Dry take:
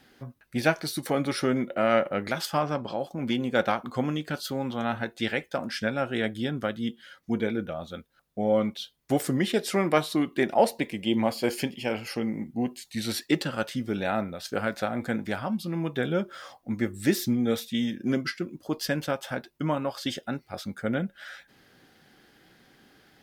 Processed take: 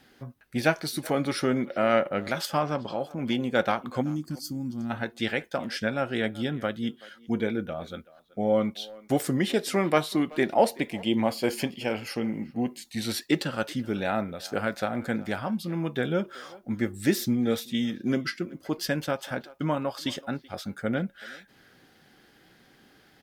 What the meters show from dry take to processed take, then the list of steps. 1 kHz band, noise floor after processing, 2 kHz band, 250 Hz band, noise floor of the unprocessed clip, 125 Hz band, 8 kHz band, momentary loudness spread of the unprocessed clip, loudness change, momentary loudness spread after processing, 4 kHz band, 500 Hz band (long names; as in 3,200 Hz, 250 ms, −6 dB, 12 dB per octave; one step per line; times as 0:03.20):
0.0 dB, −59 dBFS, 0.0 dB, 0.0 dB, −64 dBFS, 0.0 dB, 0.0 dB, 10 LU, 0.0 dB, 10 LU, 0.0 dB, 0.0 dB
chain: gain on a spectral selection 0:04.02–0:04.90, 350–4,300 Hz −19 dB
far-end echo of a speakerphone 380 ms, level −20 dB